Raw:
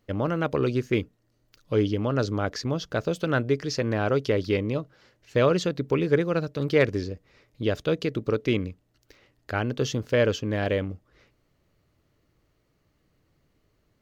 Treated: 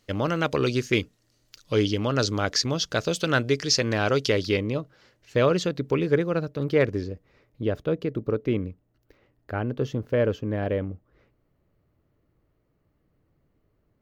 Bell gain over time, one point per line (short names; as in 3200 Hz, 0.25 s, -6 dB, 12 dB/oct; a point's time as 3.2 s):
bell 6200 Hz 2.8 oct
4.32 s +12 dB
4.77 s +1 dB
5.94 s +1 dB
6.55 s -6 dB
7.11 s -6 dB
7.93 s -14.5 dB